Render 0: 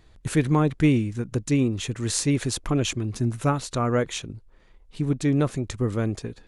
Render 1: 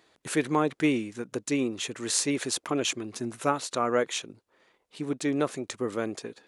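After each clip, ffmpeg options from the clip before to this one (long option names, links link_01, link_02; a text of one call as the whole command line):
ffmpeg -i in.wav -af "highpass=340" out.wav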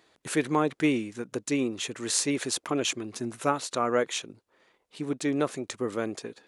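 ffmpeg -i in.wav -af anull out.wav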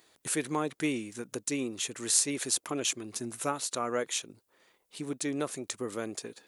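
ffmpeg -i in.wav -filter_complex "[0:a]aemphasis=mode=production:type=50fm,asplit=2[link_01][link_02];[link_02]acompressor=threshold=-34dB:ratio=6,volume=-2dB[link_03];[link_01][link_03]amix=inputs=2:normalize=0,volume=-7.5dB" out.wav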